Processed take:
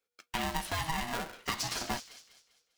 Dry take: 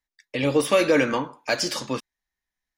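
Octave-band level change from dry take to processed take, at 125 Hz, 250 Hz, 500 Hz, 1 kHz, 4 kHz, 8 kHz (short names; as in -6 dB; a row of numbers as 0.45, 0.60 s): -8.0, -16.0, -21.5, -5.0, -7.0, -6.0 dB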